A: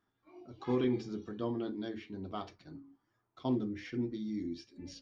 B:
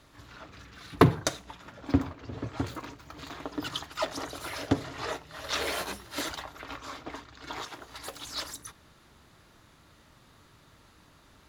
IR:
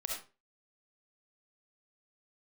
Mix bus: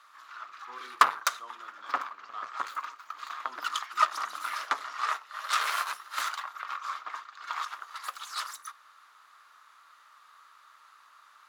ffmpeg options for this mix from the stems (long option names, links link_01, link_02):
-filter_complex "[0:a]volume=-6.5dB[link_01];[1:a]asoftclip=type=tanh:threshold=-7dB,aeval=exprs='0.398*(cos(1*acos(clip(val(0)/0.398,-1,1)))-cos(1*PI/2))+0.0891*(cos(8*acos(clip(val(0)/0.398,-1,1)))-cos(8*PI/2))':channel_layout=same,volume=-3dB[link_02];[link_01][link_02]amix=inputs=2:normalize=0,highpass=frequency=1200:width_type=q:width=5"